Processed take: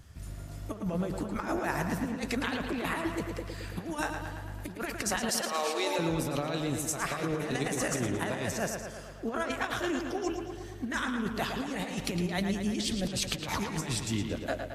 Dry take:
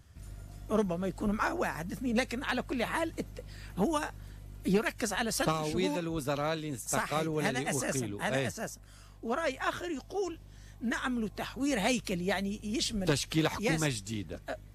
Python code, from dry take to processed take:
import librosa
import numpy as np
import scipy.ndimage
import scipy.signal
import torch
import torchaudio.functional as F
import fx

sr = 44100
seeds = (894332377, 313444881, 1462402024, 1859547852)

y = fx.highpass(x, sr, hz=440.0, slope=24, at=(5.29, 5.99))
y = fx.over_compress(y, sr, threshold_db=-34.0, ratio=-0.5)
y = fx.echo_tape(y, sr, ms=112, feedback_pct=71, wet_db=-5.0, lp_hz=4900.0, drive_db=21.0, wow_cents=21)
y = F.gain(torch.from_numpy(y), 2.0).numpy()